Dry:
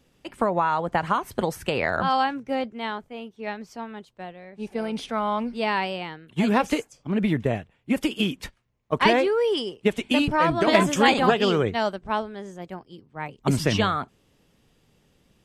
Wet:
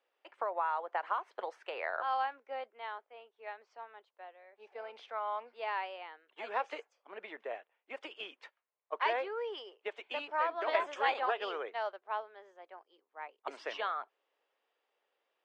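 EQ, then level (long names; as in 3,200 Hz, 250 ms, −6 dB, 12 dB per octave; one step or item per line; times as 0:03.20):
Bessel high-pass filter 790 Hz, order 6
head-to-tape spacing loss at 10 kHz 36 dB
−4.5 dB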